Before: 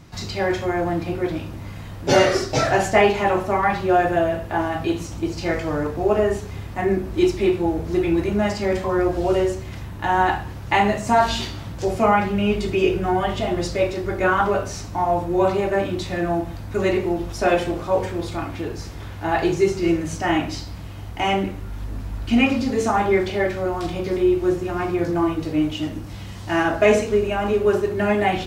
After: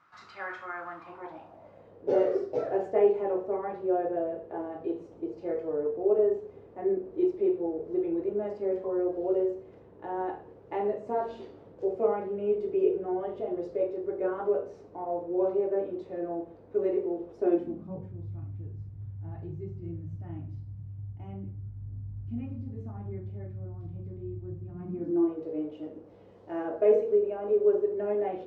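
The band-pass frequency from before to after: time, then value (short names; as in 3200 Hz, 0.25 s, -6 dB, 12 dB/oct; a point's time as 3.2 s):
band-pass, Q 5.2
0.92 s 1300 Hz
1.99 s 450 Hz
17.36 s 450 Hz
18.21 s 110 Hz
24.64 s 110 Hz
25.34 s 470 Hz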